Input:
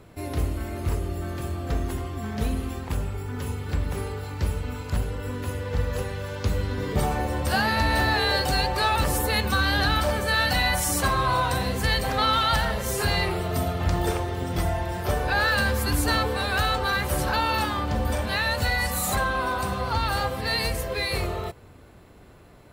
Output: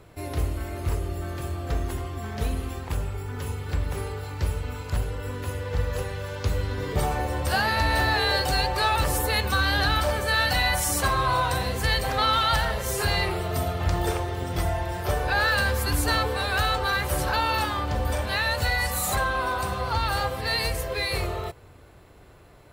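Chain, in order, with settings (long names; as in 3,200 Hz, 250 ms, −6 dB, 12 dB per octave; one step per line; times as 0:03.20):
parametric band 220 Hz −7 dB 0.71 octaves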